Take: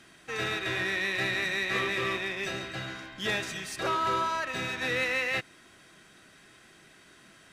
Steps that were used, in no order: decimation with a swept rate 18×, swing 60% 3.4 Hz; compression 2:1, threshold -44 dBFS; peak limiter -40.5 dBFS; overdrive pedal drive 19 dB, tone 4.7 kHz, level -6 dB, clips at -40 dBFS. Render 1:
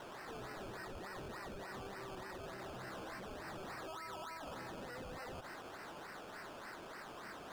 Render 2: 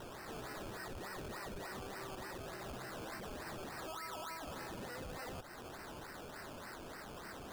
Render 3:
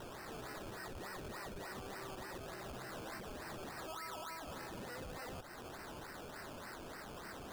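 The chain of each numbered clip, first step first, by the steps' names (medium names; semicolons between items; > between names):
decimation with a swept rate > overdrive pedal > peak limiter > compression; compression > overdrive pedal > decimation with a swept rate > peak limiter; compression > overdrive pedal > peak limiter > decimation with a swept rate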